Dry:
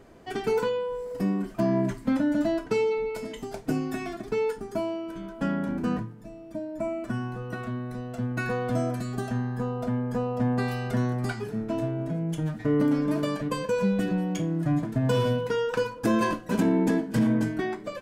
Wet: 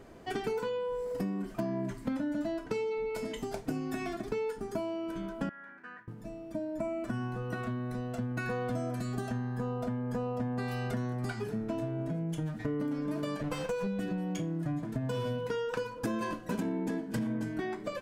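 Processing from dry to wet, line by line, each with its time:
5.49–6.08 s: band-pass filter 1.7 kHz, Q 5.1
13.43–13.87 s: comb filter that takes the minimum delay 6.1 ms
whole clip: compression, threshold -31 dBFS

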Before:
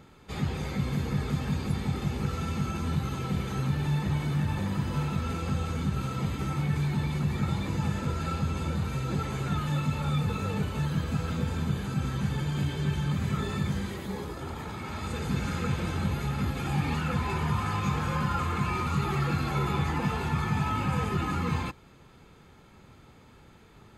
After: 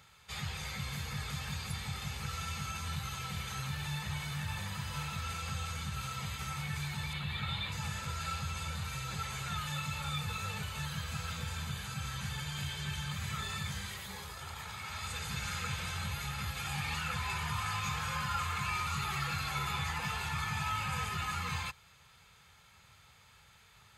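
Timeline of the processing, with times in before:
7.13–7.72 s: resonant high shelf 4.6 kHz -7.5 dB, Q 3
whole clip: high-pass 75 Hz; amplifier tone stack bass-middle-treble 10-0-10; trim +4 dB

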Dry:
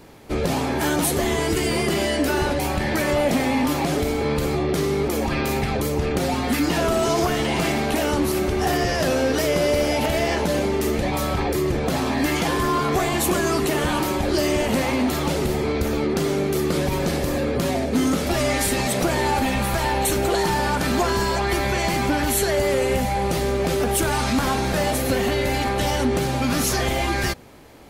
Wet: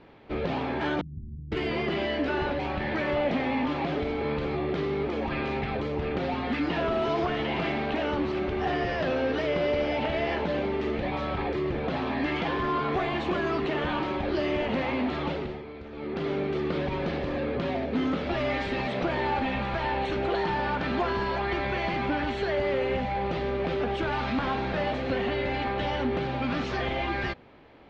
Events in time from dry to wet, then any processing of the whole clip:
1.01–1.52 s: inverse Chebyshev low-pass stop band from 560 Hz, stop band 60 dB
15.27–16.30 s: dip -12 dB, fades 0.38 s
whole clip: inverse Chebyshev low-pass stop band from 12 kHz, stop band 70 dB; bass shelf 180 Hz -4.5 dB; trim -5.5 dB

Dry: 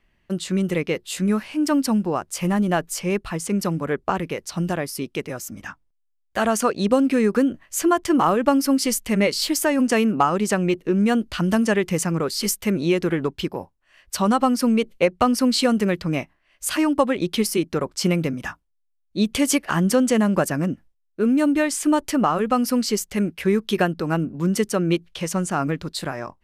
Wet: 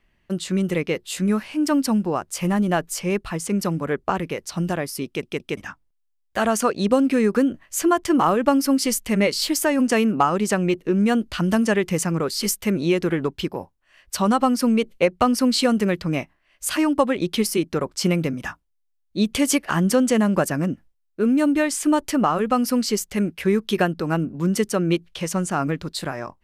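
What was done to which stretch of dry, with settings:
5.06 s: stutter in place 0.17 s, 3 plays

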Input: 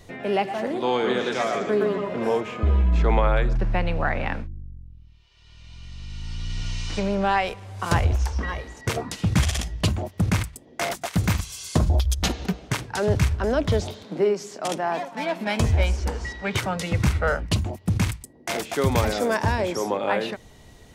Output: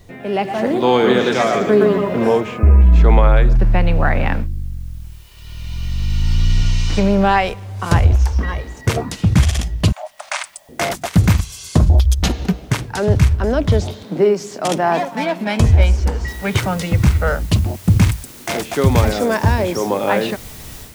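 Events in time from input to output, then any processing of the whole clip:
2.58–2.82 s: spectral selection erased 2.9–8.4 kHz
9.92–10.69 s: brick-wall FIR band-pass 550–10000 Hz
16.28 s: noise floor step -64 dB -45 dB
whole clip: bass shelf 260 Hz +6.5 dB; level rider gain up to 13 dB; trim -1 dB

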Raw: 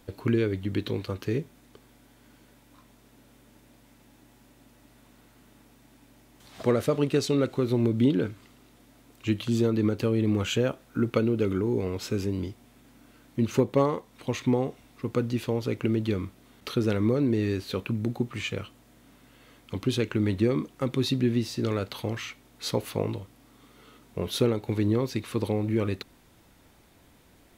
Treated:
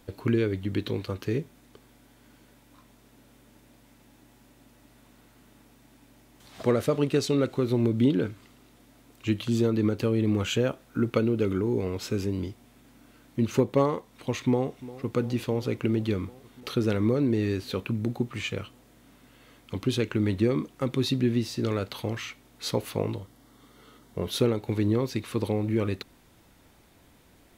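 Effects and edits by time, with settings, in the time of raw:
14.42–15.11 s: echo throw 350 ms, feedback 80%, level -17 dB
23.15–24.28 s: band-stop 2.5 kHz, Q 5.5

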